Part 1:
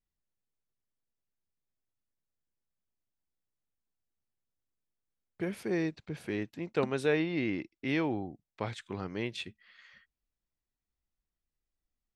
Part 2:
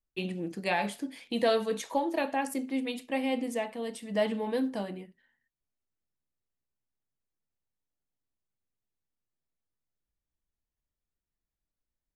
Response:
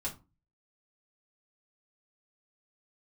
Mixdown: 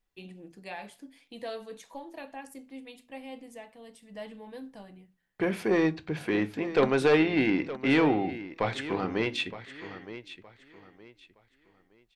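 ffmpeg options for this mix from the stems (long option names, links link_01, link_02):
-filter_complex "[0:a]aeval=exprs='0.168*sin(PI/2*2*val(0)/0.168)':channel_layout=same,bass=frequency=250:gain=-7,treble=frequency=4000:gain=-7,volume=-1.5dB,asplit=3[link_01][link_02][link_03];[link_02]volume=-8.5dB[link_04];[link_03]volume=-12dB[link_05];[1:a]asubboost=boost=7:cutoff=100,volume=-12.5dB,asplit=2[link_06][link_07];[link_07]volume=-12.5dB[link_08];[2:a]atrim=start_sample=2205[link_09];[link_04][link_08]amix=inputs=2:normalize=0[link_10];[link_10][link_09]afir=irnorm=-1:irlink=0[link_11];[link_05]aecho=0:1:917|1834|2751|3668:1|0.29|0.0841|0.0244[link_12];[link_01][link_06][link_11][link_12]amix=inputs=4:normalize=0"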